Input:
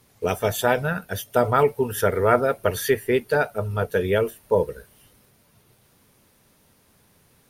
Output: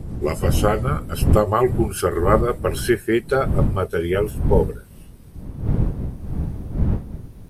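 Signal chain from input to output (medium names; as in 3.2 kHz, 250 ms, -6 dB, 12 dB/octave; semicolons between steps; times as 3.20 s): pitch bend over the whole clip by -3 st ending unshifted; wind noise 130 Hz -25 dBFS; trim +2 dB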